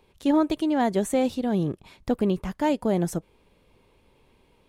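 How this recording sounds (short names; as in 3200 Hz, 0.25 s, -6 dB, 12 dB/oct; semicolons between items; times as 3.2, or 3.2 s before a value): noise floor -63 dBFS; spectral tilt -6.5 dB/oct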